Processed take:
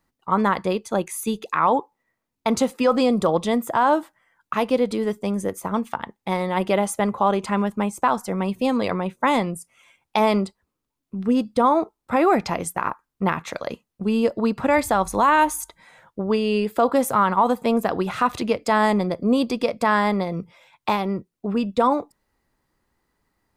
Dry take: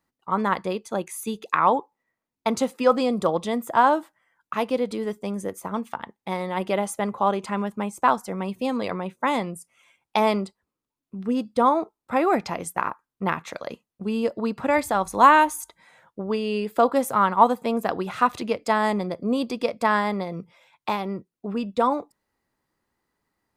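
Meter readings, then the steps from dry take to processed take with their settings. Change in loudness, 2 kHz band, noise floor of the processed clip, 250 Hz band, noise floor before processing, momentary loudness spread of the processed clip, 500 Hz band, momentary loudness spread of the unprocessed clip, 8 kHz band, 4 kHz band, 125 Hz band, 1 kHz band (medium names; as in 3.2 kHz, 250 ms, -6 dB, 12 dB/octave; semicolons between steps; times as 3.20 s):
+2.0 dB, +1.0 dB, -81 dBFS, +4.5 dB, under -85 dBFS, 10 LU, +2.5 dB, 12 LU, +4.0 dB, +3.0 dB, +5.0 dB, +0.5 dB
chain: bass shelf 66 Hz +11.5 dB; peak limiter -12.5 dBFS, peak gain reduction 9.5 dB; trim +4 dB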